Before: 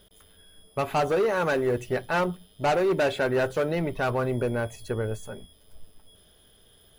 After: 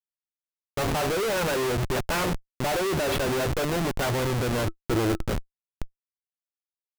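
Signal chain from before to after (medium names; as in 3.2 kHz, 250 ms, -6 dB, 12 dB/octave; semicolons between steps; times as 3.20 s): 2.11–2.62 s: spectral peaks clipped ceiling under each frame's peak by 16 dB; Schmitt trigger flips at -34.5 dBFS; 4.66–5.31 s: small resonant body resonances 330/1300 Hz, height 12 dB -> 8 dB, ringing for 70 ms; trim +2.5 dB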